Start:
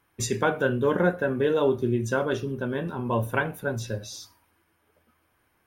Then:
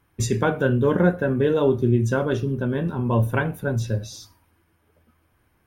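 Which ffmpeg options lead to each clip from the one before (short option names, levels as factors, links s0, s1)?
-af "lowshelf=f=250:g=11"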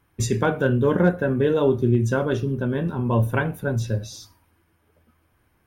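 -af "asoftclip=type=hard:threshold=0.376"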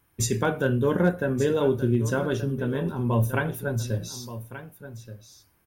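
-af "crystalizer=i=1.5:c=0,aecho=1:1:1178:0.211,volume=0.668"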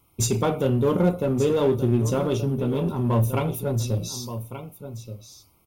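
-filter_complex "[0:a]asuperstop=centerf=1700:order=8:qfactor=2.3,asplit=2[s0][s1];[s1]asoftclip=type=hard:threshold=0.0376,volume=0.668[s2];[s0][s2]amix=inputs=2:normalize=0"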